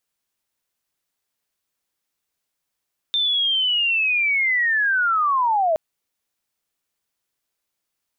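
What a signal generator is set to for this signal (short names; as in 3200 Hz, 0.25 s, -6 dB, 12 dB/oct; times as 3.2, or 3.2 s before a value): chirp linear 3600 Hz -> 610 Hz -17.5 dBFS -> -16 dBFS 2.62 s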